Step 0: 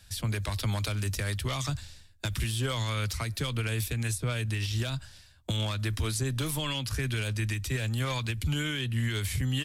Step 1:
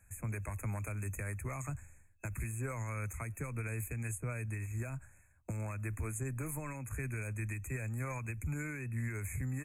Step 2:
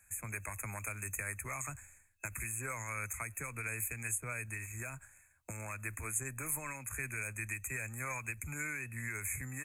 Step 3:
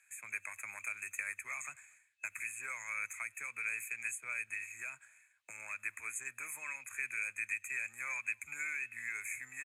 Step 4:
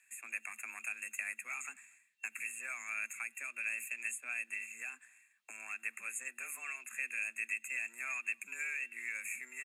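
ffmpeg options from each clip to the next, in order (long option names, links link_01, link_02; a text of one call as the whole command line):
ffmpeg -i in.wav -af "afftfilt=real='re*(1-between(b*sr/4096,2600,6300))':imag='im*(1-between(b*sr/4096,2600,6300))':win_size=4096:overlap=0.75,volume=-8dB" out.wav
ffmpeg -i in.wav -filter_complex "[0:a]tiltshelf=frequency=800:gain=-8,asplit=2[link_01][link_02];[link_02]aeval=exprs='sgn(val(0))*max(abs(val(0))-0.00126,0)':channel_layout=same,volume=-11dB[link_03];[link_01][link_03]amix=inputs=2:normalize=0,volume=-2dB" out.wav
ffmpeg -i in.wav -filter_complex "[0:a]bandpass=frequency=3100:width_type=q:width=1.7:csg=0,asplit=2[link_01][link_02];[link_02]adelay=239.1,volume=-29dB,highshelf=frequency=4000:gain=-5.38[link_03];[link_01][link_03]amix=inputs=2:normalize=0,volume=7dB" out.wav
ffmpeg -i in.wav -af "afreqshift=120" out.wav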